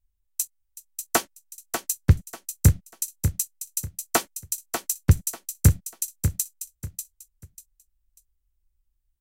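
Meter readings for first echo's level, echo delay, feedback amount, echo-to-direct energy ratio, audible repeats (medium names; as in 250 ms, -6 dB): -7.5 dB, 592 ms, 26%, -7.0 dB, 3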